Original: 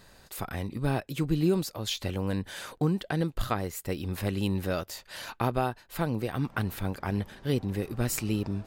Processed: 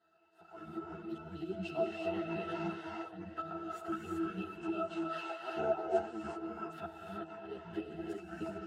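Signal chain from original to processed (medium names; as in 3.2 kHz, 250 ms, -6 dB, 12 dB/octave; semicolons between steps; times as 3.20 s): pitch shift switched off and on -9.5 st, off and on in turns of 168 ms; high-pass 640 Hz 12 dB/octave; band-stop 2.6 kHz, Q 10; repeats whose band climbs or falls 261 ms, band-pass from 2.5 kHz, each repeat 0.7 oct, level -12 dB; slow attack 291 ms; pitch-class resonator E, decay 0.19 s; gated-style reverb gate 400 ms rising, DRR -1 dB; level rider gain up to 14.5 dB; three-phase chorus; trim +9 dB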